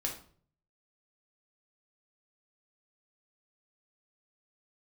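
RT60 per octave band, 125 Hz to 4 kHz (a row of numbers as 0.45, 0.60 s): 0.85, 0.60, 0.55, 0.45, 0.40, 0.35 s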